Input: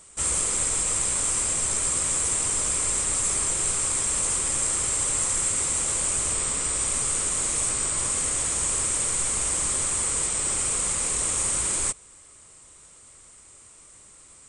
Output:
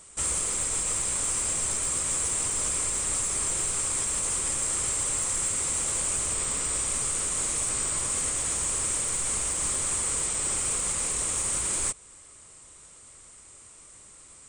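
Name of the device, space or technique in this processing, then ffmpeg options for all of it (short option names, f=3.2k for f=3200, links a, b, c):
soft clipper into limiter: -af "asoftclip=type=tanh:threshold=-13.5dB,alimiter=limit=-19dB:level=0:latency=1:release=208"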